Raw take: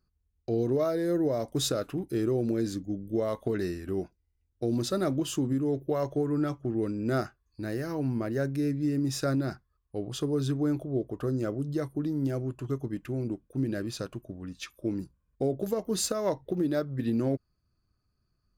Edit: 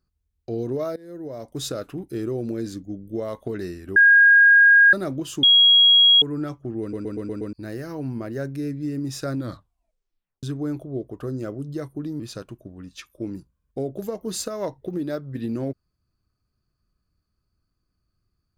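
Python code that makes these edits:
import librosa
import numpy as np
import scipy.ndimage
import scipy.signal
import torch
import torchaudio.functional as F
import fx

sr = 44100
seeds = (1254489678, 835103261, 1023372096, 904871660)

y = fx.edit(x, sr, fx.fade_in_from(start_s=0.96, length_s=0.81, floor_db=-20.0),
    fx.bleep(start_s=3.96, length_s=0.97, hz=1630.0, db=-9.5),
    fx.bleep(start_s=5.43, length_s=0.79, hz=3300.0, db=-10.5),
    fx.stutter_over(start_s=6.81, slice_s=0.12, count=6),
    fx.tape_stop(start_s=9.36, length_s=1.07),
    fx.cut(start_s=12.2, length_s=1.64), tone=tone)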